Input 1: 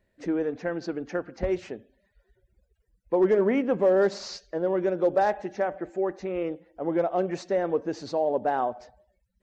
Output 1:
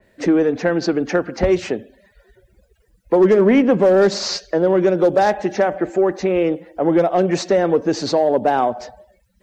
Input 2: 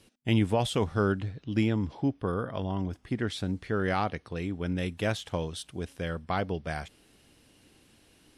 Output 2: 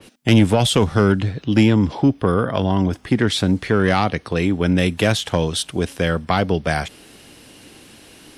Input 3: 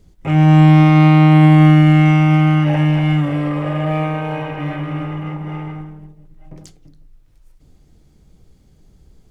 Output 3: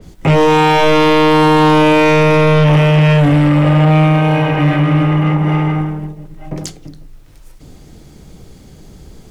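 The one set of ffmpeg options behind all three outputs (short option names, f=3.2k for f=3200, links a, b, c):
-filter_complex "[0:a]lowshelf=f=110:g=-8.5,acrossover=split=250|3000[a][b][c];[b]acompressor=threshold=-36dB:ratio=2[d];[a][d][c]amix=inputs=3:normalize=0,aeval=exprs='0.501*sin(PI/2*4.47*val(0)/0.501)':c=same,adynamicequalizer=threshold=0.0398:dfrequency=3400:dqfactor=0.7:tfrequency=3400:tqfactor=0.7:attack=5:release=100:ratio=0.375:range=1.5:mode=cutabove:tftype=highshelf"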